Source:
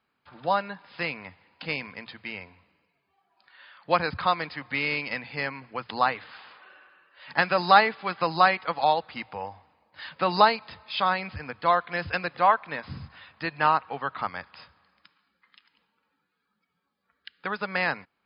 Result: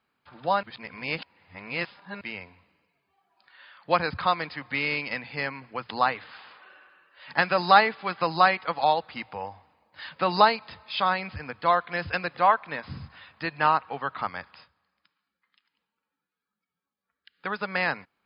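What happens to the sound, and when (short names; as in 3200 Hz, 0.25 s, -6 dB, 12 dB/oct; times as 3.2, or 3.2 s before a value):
0.63–2.21 reverse
14.5–17.48 dip -10.5 dB, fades 0.19 s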